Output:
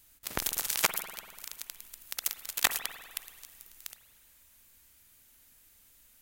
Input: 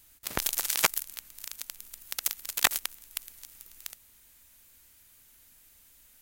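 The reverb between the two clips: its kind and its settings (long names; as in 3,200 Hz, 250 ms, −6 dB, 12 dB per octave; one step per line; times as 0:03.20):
spring reverb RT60 1.7 s, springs 48 ms, chirp 55 ms, DRR 9 dB
level −2.5 dB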